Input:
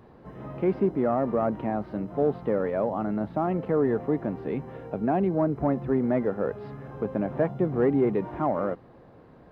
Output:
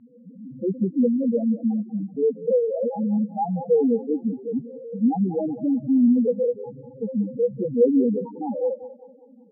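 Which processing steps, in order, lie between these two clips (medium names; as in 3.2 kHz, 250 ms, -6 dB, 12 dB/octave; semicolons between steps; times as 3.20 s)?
tracing distortion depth 0.059 ms; small resonant body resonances 240/490/820/2900 Hz, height 12 dB, ringing for 45 ms; loudest bins only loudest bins 2; on a send: thinning echo 190 ms, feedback 67%, high-pass 830 Hz, level -9 dB; on the sum: level-controlled noise filter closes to 1.9 kHz, open at -20.5 dBFS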